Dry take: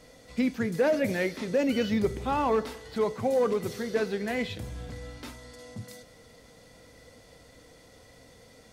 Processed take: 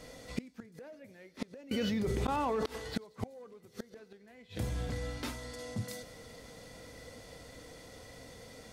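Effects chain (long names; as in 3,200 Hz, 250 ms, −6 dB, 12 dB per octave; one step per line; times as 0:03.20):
gate with flip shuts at −24 dBFS, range −29 dB
delay with a high-pass on its return 91 ms, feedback 64%, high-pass 4,800 Hz, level −20.5 dB
0:01.71–0:02.66: envelope flattener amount 100%
level +3 dB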